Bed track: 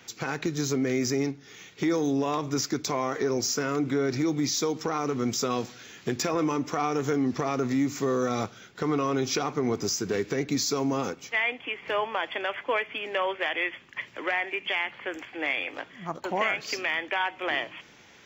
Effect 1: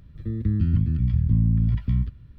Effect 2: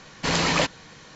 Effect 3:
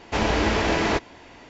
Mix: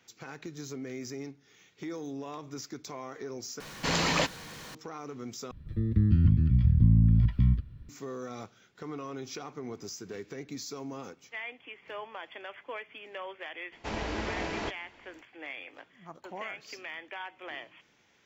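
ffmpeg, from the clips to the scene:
ffmpeg -i bed.wav -i cue0.wav -i cue1.wav -i cue2.wav -filter_complex "[0:a]volume=-13dB[link_01];[2:a]aeval=exprs='val(0)+0.5*0.0133*sgn(val(0))':channel_layout=same[link_02];[link_01]asplit=3[link_03][link_04][link_05];[link_03]atrim=end=3.604[link_06];[link_02]atrim=end=1.15,asetpts=PTS-STARTPTS,volume=-5.5dB[link_07];[link_04]atrim=start=4.746:end=5.514[link_08];[1:a]atrim=end=2.38,asetpts=PTS-STARTPTS,volume=-1dB[link_09];[link_05]atrim=start=7.886[link_10];[3:a]atrim=end=1.49,asetpts=PTS-STARTPTS,volume=-12.5dB,afade=type=in:duration=0.004:curve=hsin,afade=type=out:start_time=1.486:duration=0.004:curve=hsin,adelay=13720[link_11];[link_06][link_07]acrossfade=duration=0.004:curve1=hsin:curve2=hsin[link_12];[link_12][link_08]acrossfade=duration=0.004:curve1=hsin:curve2=hsin[link_13];[link_13][link_09]acrossfade=duration=0.004:curve1=hsin:curve2=hsin[link_14];[link_14][link_10]acrossfade=duration=0.004:curve1=hsin:curve2=hsin[link_15];[link_15][link_11]amix=inputs=2:normalize=0" out.wav

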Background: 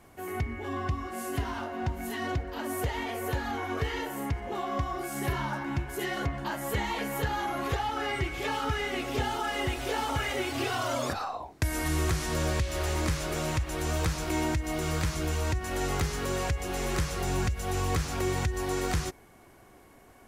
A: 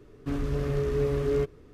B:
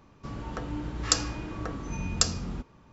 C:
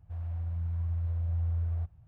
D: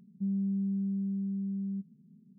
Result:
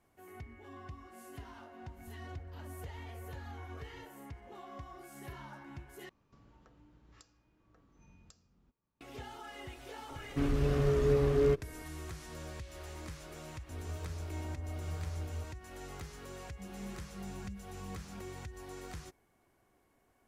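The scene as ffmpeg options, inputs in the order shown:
ffmpeg -i bed.wav -i cue0.wav -i cue1.wav -i cue2.wav -i cue3.wav -filter_complex "[3:a]asplit=2[link_01][link_02];[0:a]volume=-16.5dB[link_03];[link_01]acompressor=threshold=-47dB:ratio=6:attack=3.2:release=140:knee=1:detection=peak[link_04];[2:a]acompressor=threshold=-41dB:ratio=4:attack=3.5:release=899:knee=1:detection=rms[link_05];[link_02]acrusher=bits=5:mix=0:aa=0.5[link_06];[4:a]flanger=delay=22.5:depth=5:speed=1.5[link_07];[link_03]asplit=2[link_08][link_09];[link_08]atrim=end=6.094[link_10];[link_05]atrim=end=2.92,asetpts=PTS-STARTPTS,volume=-16dB[link_11];[link_09]atrim=start=9.006[link_12];[link_04]atrim=end=2.07,asetpts=PTS-STARTPTS,volume=-1dB,afade=type=in:duration=0.004:curve=hsin,afade=type=out:start_time=2.066:duration=0.004:curve=hsin,adelay=1980[link_13];[1:a]atrim=end=1.73,asetpts=PTS-STARTPTS,volume=-1dB,afade=type=in:duration=0.004:curve=hsin,afade=type=out:start_time=1.726:duration=0.004:curve=hsin,adelay=445410S[link_14];[link_06]atrim=end=2.07,asetpts=PTS-STARTPTS,volume=-9dB,afade=type=in:duration=0.004:curve=hsin,afade=type=out:start_time=2.066:duration=0.004:curve=hsin,adelay=13590[link_15];[link_07]atrim=end=2.38,asetpts=PTS-STARTPTS,volume=-12.5dB,afade=type=in:duration=0.004:curve=hsin,afade=type=out:start_time=2.376:duration=0.004:curve=hsin,adelay=16380[link_16];[link_10][link_11]acrossfade=duration=0.004:curve1=hsin:curve2=hsin[link_17];[link_17][link_12]acrossfade=duration=0.004:curve1=hsin:curve2=hsin[link_18];[link_18][link_13][link_14][link_15][link_16]amix=inputs=5:normalize=0" out.wav

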